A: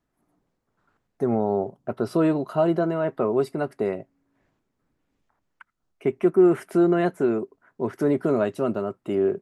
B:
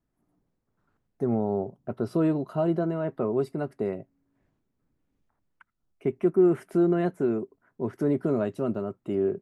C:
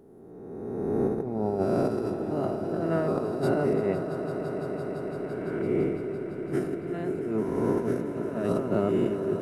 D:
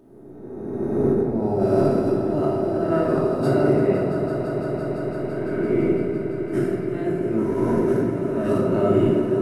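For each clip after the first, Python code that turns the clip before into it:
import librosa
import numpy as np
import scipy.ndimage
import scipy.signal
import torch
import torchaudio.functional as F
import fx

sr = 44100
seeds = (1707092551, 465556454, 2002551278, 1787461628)

y1 = fx.low_shelf(x, sr, hz=360.0, db=9.0)
y1 = y1 * 10.0 ** (-8.0 / 20.0)
y2 = fx.spec_swells(y1, sr, rise_s=1.98)
y2 = fx.over_compress(y2, sr, threshold_db=-28.0, ratio=-0.5)
y2 = fx.echo_swell(y2, sr, ms=169, loudest=5, wet_db=-13.0)
y3 = fx.room_shoebox(y2, sr, seeds[0], volume_m3=1100.0, walls='mixed', distance_m=2.7)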